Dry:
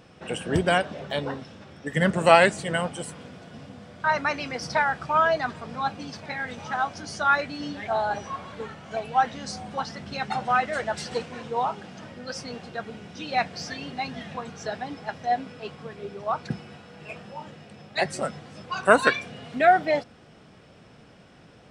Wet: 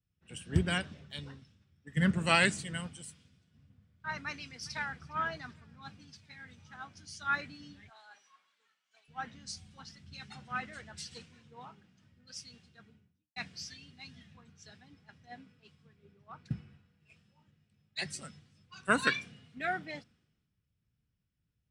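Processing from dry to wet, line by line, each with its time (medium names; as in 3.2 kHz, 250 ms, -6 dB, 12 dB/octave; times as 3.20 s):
4.23–5.00 s: echo throw 410 ms, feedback 40%, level -15 dB
7.89–9.08 s: high-pass 850 Hz
12.83–13.36 s: studio fade out
whole clip: amplifier tone stack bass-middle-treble 6-0-2; three bands expanded up and down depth 100%; trim +5 dB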